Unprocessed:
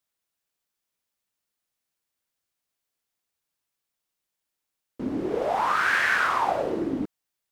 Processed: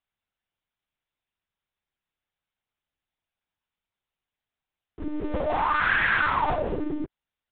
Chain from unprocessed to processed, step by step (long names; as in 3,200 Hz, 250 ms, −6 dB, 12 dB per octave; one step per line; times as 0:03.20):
parametric band 150 Hz −3.5 dB 1.1 octaves
one-pitch LPC vocoder at 8 kHz 300 Hz